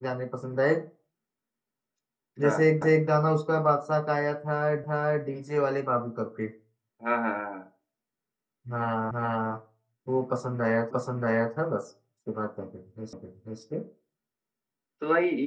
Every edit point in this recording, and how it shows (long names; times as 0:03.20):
0:02.82: the same again, the last 0.26 s
0:04.84: the same again, the last 0.42 s
0:09.11: the same again, the last 0.42 s
0:10.91: the same again, the last 0.63 s
0:13.13: the same again, the last 0.49 s